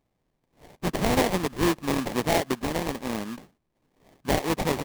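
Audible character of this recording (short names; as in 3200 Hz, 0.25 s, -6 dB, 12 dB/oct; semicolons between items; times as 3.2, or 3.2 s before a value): aliases and images of a low sample rate 1400 Hz, jitter 20%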